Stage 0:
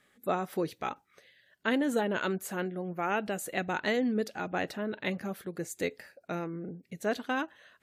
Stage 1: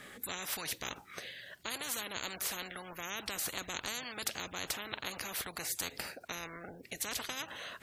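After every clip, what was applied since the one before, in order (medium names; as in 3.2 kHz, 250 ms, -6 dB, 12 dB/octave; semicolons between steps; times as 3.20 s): spectrum-flattening compressor 10:1; trim -3.5 dB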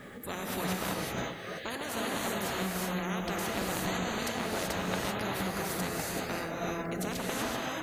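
tilt shelf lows +7.5 dB, about 1.5 kHz; gated-style reverb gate 410 ms rising, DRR -3.5 dB; added noise blue -72 dBFS; trim +1.5 dB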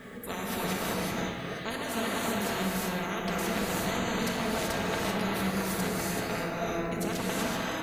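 simulated room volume 1700 m³, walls mixed, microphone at 1.6 m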